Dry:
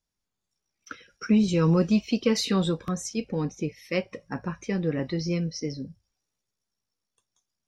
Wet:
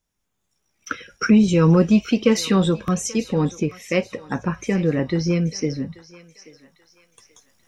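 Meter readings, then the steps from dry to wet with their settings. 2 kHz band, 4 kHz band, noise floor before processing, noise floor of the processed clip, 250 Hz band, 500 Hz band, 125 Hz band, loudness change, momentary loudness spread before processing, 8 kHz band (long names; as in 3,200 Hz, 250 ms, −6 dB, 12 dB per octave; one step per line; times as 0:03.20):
+8.0 dB, +3.5 dB, −85 dBFS, −75 dBFS, +6.5 dB, +7.0 dB, +7.0 dB, +6.5 dB, 17 LU, +7.0 dB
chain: camcorder AGC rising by 8 dB per second
parametric band 4,500 Hz −8.5 dB 0.38 octaves
on a send: feedback echo with a high-pass in the loop 833 ms, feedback 42%, high-pass 820 Hz, level −15.5 dB
on the sum: level +6.5 dB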